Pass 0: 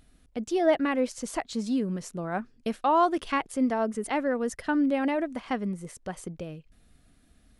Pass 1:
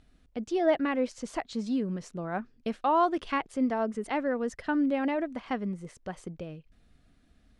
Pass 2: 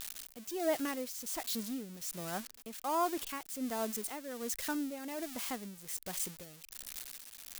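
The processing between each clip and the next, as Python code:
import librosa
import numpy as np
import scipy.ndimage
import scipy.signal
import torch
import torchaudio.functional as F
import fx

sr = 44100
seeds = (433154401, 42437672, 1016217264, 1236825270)

y1 = scipy.signal.sosfilt(scipy.signal.bessel(2, 5200.0, 'lowpass', norm='mag', fs=sr, output='sos'), x)
y1 = y1 * 10.0 ** (-2.0 / 20.0)
y2 = y1 + 0.5 * 10.0 ** (-21.5 / 20.0) * np.diff(np.sign(y1), prepend=np.sign(y1[:1]))
y2 = y2 * (1.0 - 0.64 / 2.0 + 0.64 / 2.0 * np.cos(2.0 * np.pi * 1.3 * (np.arange(len(y2)) / sr)))
y2 = y2 * 10.0 ** (-7.0 / 20.0)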